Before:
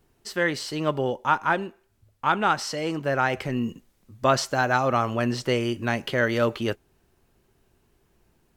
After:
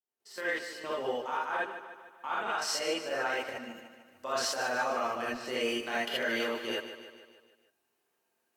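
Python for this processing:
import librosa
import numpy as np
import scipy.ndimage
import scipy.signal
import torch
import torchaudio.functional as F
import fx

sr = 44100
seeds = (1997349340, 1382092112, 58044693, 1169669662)

y = fx.fade_in_head(x, sr, length_s=0.64)
y = scipy.signal.sosfilt(scipy.signal.butter(2, 410.0, 'highpass', fs=sr, output='sos'), y)
y = fx.high_shelf(y, sr, hz=10000.0, db=5.0)
y = fx.level_steps(y, sr, step_db=16)
y = fx.echo_feedback(y, sr, ms=150, feedback_pct=56, wet_db=-11.0)
y = fx.rev_gated(y, sr, seeds[0], gate_ms=100, shape='rising', drr_db=-7.0)
y = y * librosa.db_to_amplitude(-6.5)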